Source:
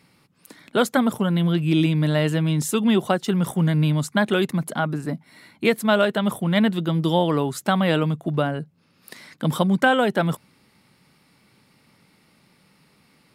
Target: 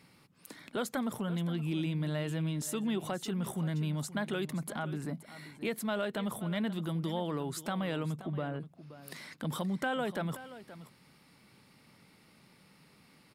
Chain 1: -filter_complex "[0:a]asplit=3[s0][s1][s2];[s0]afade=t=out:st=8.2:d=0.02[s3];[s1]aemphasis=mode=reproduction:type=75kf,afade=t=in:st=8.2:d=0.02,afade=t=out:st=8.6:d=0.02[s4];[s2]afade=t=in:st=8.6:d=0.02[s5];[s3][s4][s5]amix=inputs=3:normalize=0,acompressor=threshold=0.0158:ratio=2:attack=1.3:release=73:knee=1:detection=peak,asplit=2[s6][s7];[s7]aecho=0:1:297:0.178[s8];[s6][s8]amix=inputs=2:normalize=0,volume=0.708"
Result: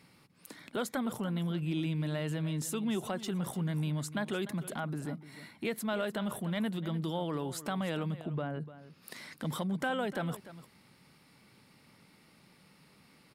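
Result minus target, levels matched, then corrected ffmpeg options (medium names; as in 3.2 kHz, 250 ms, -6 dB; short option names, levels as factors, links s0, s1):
echo 229 ms early
-filter_complex "[0:a]asplit=3[s0][s1][s2];[s0]afade=t=out:st=8.2:d=0.02[s3];[s1]aemphasis=mode=reproduction:type=75kf,afade=t=in:st=8.2:d=0.02,afade=t=out:st=8.6:d=0.02[s4];[s2]afade=t=in:st=8.6:d=0.02[s5];[s3][s4][s5]amix=inputs=3:normalize=0,acompressor=threshold=0.0158:ratio=2:attack=1.3:release=73:knee=1:detection=peak,asplit=2[s6][s7];[s7]aecho=0:1:526:0.178[s8];[s6][s8]amix=inputs=2:normalize=0,volume=0.708"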